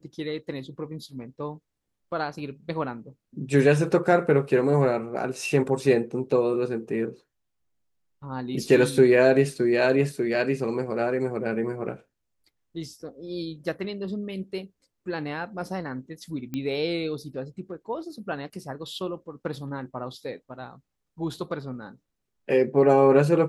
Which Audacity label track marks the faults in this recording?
16.540000	16.540000	pop -18 dBFS

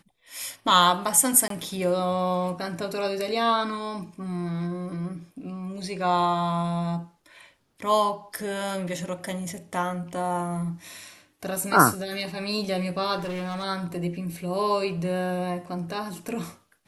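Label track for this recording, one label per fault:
1.480000	1.500000	gap 23 ms
13.170000	13.640000	clipped -28 dBFS

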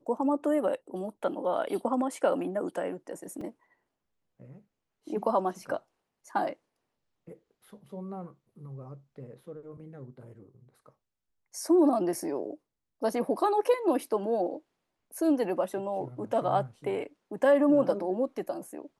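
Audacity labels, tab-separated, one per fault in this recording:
3.410000	3.410000	gap 3.4 ms

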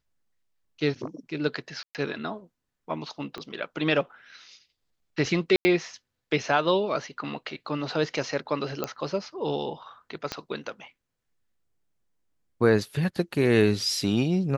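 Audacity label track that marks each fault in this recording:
1.830000	1.950000	gap 0.118 s
3.380000	3.380000	pop -22 dBFS
5.560000	5.650000	gap 90 ms
8.840000	8.840000	pop -13 dBFS
10.320000	10.320000	pop -15 dBFS

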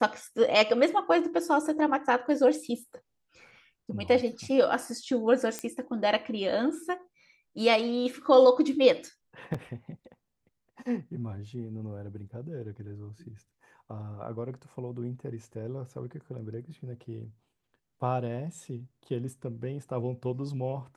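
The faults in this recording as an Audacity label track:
5.590000	5.590000	pop -17 dBFS
9.540000	9.540000	gap 4.8 ms

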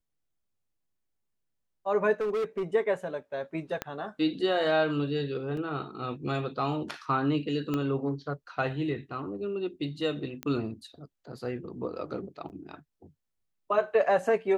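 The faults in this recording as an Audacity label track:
2.200000	2.630000	clipped -26 dBFS
3.820000	3.820000	pop -16 dBFS
5.570000	5.570000	gap 2.9 ms
7.740000	7.740000	pop -18 dBFS
10.430000	10.430000	pop -19 dBFS
12.490000	12.500000	gap 9 ms

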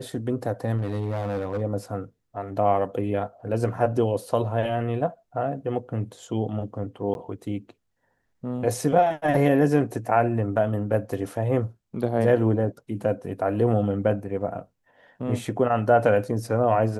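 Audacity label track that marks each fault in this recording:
0.770000	1.620000	clipped -23.5 dBFS
7.140000	7.150000	gap 11 ms

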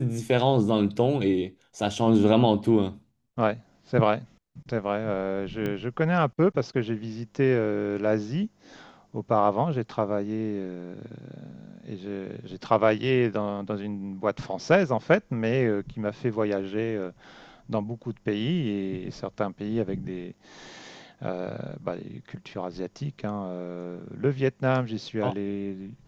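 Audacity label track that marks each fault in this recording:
5.660000	5.660000	pop -18 dBFS

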